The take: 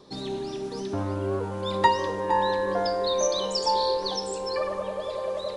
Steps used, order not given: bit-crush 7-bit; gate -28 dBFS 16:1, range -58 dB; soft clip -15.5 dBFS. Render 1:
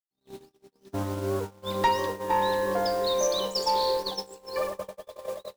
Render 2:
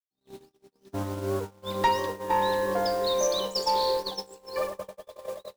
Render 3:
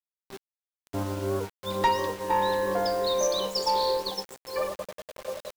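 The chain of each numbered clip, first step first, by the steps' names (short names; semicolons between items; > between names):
bit-crush > gate > soft clip; bit-crush > soft clip > gate; gate > bit-crush > soft clip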